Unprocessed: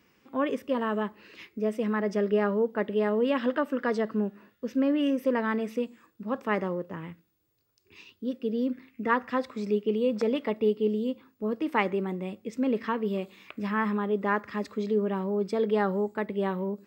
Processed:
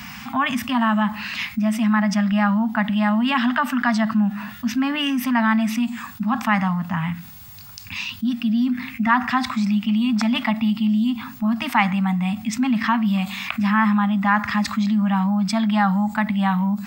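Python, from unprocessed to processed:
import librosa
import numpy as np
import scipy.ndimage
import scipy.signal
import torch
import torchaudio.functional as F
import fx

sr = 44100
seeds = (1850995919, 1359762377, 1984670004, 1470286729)

y = scipy.signal.sosfilt(scipy.signal.ellip(3, 1.0, 40, [240.0, 720.0], 'bandstop', fs=sr, output='sos'), x)
y = fx.env_flatten(y, sr, amount_pct=50)
y = F.gain(torch.from_numpy(y), 8.0).numpy()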